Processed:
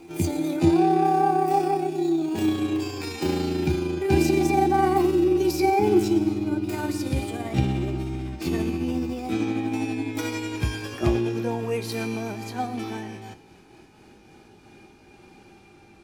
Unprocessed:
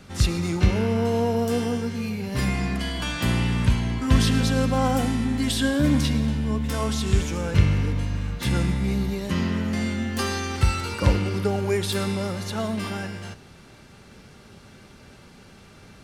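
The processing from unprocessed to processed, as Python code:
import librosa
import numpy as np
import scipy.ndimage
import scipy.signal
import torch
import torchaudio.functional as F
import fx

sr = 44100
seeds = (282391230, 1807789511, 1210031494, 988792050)

y = fx.pitch_glide(x, sr, semitones=9.5, runs='ending unshifted')
y = fx.small_body(y, sr, hz=(340.0, 790.0, 2400.0), ring_ms=55, db=16)
y = y * 10.0 ** (-6.0 / 20.0)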